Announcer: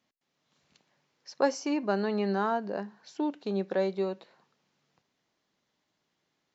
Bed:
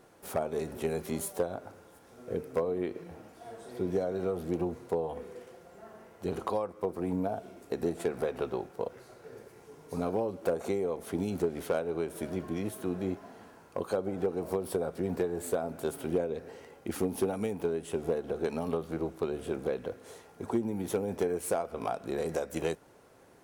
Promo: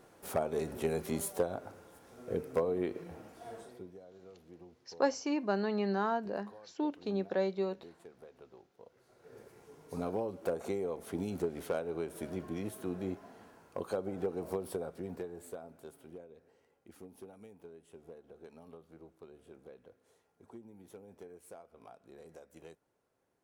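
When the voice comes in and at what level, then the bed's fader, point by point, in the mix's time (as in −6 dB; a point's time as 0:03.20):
3.60 s, −3.5 dB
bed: 0:03.60 −1 dB
0:03.94 −22.5 dB
0:08.80 −22.5 dB
0:09.40 −4.5 dB
0:14.56 −4.5 dB
0:16.27 −21 dB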